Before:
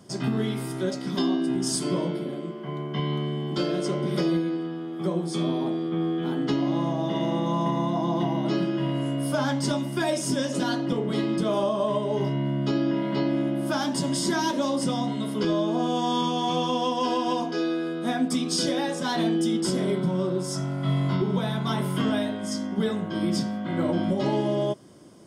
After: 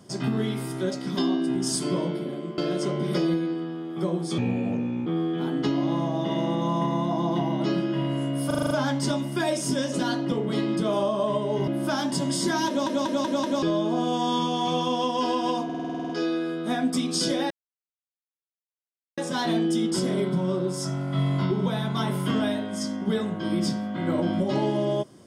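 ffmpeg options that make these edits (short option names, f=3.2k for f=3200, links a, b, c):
-filter_complex "[0:a]asplit=26[a][b][c][d][e][f][g][h][i][j][k][l][m][n][o][p][q][r][s][t][u][v][w][x][y][z];[a]atrim=end=2.582[aa];[b]atrim=start=3.608:end=5.414[ab];[c]atrim=start=5.41:end=5.91,asetpts=PTS-STARTPTS,asetrate=32193,aresample=44100,atrim=end_sample=30205,asetpts=PTS-STARTPTS[ac];[d]atrim=start=5.906:end=9.352[ad];[e]atrim=start=9.308:end=9.352[ae];[f]atrim=start=9.308:end=9.352[af];[g]atrim=start=9.308:end=9.352[ag];[h]atrim=start=9.308:end=9.352[ah];[i]atrim=start=9.308:end=9.352[ai];[j]atrim=start=9.308:end=12.282[aj];[k]atrim=start=13.498:end=14.692[ak];[l]atrim=start=14.498:end=14.692[al];[m]atrim=start=14.498:end=14.692[am];[n]atrim=start=14.498:end=14.692[an];[o]atrim=start=14.498:end=14.692[ao];[p]atrim=start=15.448:end=17.522[ap];[q]atrim=start=17.468:end=17.522[aq];[r]atrim=start=17.468:end=17.522[ar];[s]atrim=start=17.468:end=17.522[as];[t]atrim=start=17.468:end=17.522[at];[u]atrim=start=17.468:end=17.522[au];[v]atrim=start=17.468:end=17.522[av];[w]atrim=start=17.468:end=17.522[aw];[x]atrim=start=17.468:end=17.522[ax];[y]atrim=start=17.468:end=18.88,asetpts=PTS-STARTPTS,afade=t=out:st=1.408:d=0.004:c=hsin,apad=pad_dur=1.67[ay];[z]atrim=start=18.88,asetpts=PTS-STARTPTS,afade=t=in:d=0.004:c=hsin[az];[aa][ab]acrossfade=d=0.004:c1=hsin:c2=hsin[ba];[ba][ac]acrossfade=d=0.004:c1=hsin:c2=hsin[bb];[bb][ad]acrossfade=d=0.004:c1=hsin:c2=hsin[bc];[bc][ae]acrossfade=d=0.004:c1=hsin:c2=hsin[bd];[bd][af]acrossfade=d=0.004:c1=hsin:c2=hsin[be];[be][ag]acrossfade=d=0.004:c1=hsin:c2=hsin[bf];[bf][ah]acrossfade=d=0.004:c1=hsin:c2=hsin[bg];[bg][ai]acrossfade=d=0.004:c1=hsin:c2=hsin[bh];[bh][aj]acrossfade=d=0.004:c1=hsin:c2=hsin[bi];[bi][ak]acrossfade=d=0.004:c1=hsin:c2=hsin[bj];[bj][al]acrossfade=d=0.004:c1=hsin:c2=hsin[bk];[bk][am]acrossfade=d=0.004:c1=hsin:c2=hsin[bl];[bl][an]acrossfade=d=0.004:c1=hsin:c2=hsin[bm];[bm][ao]acrossfade=d=0.004:c1=hsin:c2=hsin[bn];[bn][ap]acrossfade=d=0.004:c1=hsin:c2=hsin[bo];[bo][aq]acrossfade=d=0.004:c1=hsin:c2=hsin[bp];[bp][ar]acrossfade=d=0.004:c1=hsin:c2=hsin[bq];[bq][as]acrossfade=d=0.004:c1=hsin:c2=hsin[br];[br][at]acrossfade=d=0.004:c1=hsin:c2=hsin[bs];[bs][au]acrossfade=d=0.004:c1=hsin:c2=hsin[bt];[bt][av]acrossfade=d=0.004:c1=hsin:c2=hsin[bu];[bu][aw]acrossfade=d=0.004:c1=hsin:c2=hsin[bv];[bv][ax]acrossfade=d=0.004:c1=hsin:c2=hsin[bw];[ay][az]concat=n=2:v=0:a=1[bx];[bw][bx]acrossfade=d=0.004:c1=hsin:c2=hsin"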